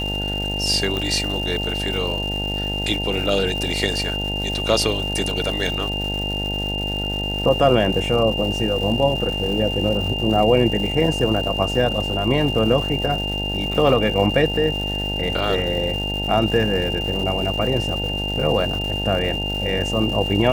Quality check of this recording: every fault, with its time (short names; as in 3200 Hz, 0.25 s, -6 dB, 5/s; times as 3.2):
buzz 50 Hz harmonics 18 -27 dBFS
crackle 380/s -29 dBFS
tone 2800 Hz -25 dBFS
0.97 pop